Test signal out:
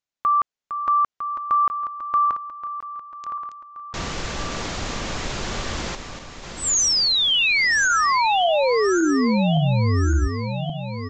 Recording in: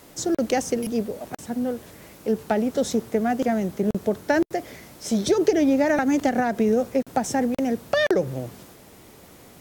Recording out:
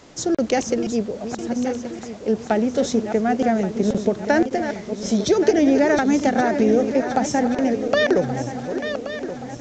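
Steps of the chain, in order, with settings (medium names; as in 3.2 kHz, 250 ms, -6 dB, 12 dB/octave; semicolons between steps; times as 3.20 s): backward echo that repeats 563 ms, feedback 68%, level -9 dB; resampled via 16 kHz; trim +2.5 dB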